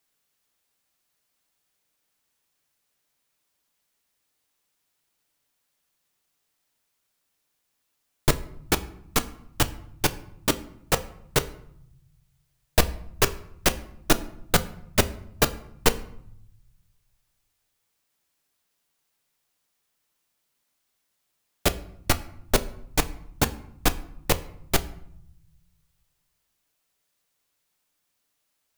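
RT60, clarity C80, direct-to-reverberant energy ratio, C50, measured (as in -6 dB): 0.70 s, 20.0 dB, 10.0 dB, 17.5 dB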